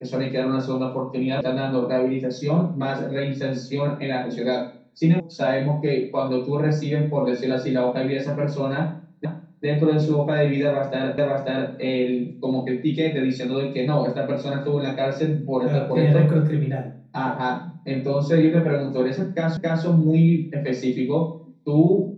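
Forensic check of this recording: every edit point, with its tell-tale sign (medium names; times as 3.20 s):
1.41 s: sound stops dead
5.20 s: sound stops dead
9.25 s: repeat of the last 0.4 s
11.18 s: repeat of the last 0.54 s
19.57 s: repeat of the last 0.27 s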